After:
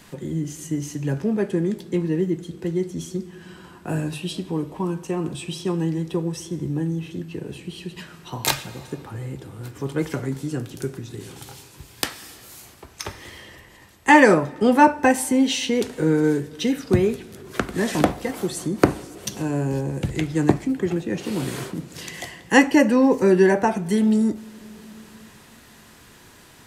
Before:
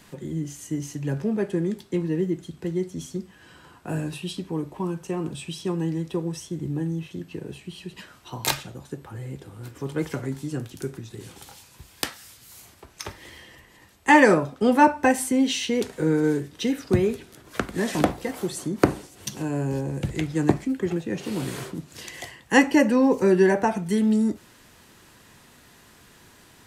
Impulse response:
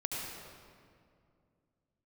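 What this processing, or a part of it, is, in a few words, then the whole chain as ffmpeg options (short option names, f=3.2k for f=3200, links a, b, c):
compressed reverb return: -filter_complex "[0:a]asplit=2[a][b];[1:a]atrim=start_sample=2205[c];[b][c]afir=irnorm=-1:irlink=0,acompressor=threshold=-28dB:ratio=4,volume=-13dB[d];[a][d]amix=inputs=2:normalize=0,volume=2dB"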